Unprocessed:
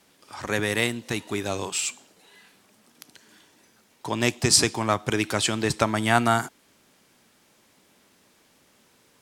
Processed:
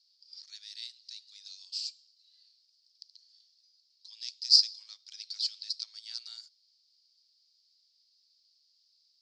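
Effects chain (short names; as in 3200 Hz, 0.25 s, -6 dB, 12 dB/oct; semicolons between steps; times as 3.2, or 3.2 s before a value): in parallel at -5.5 dB: wrapped overs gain 4.5 dB; on the sum: Butterworth band-pass 4700 Hz, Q 5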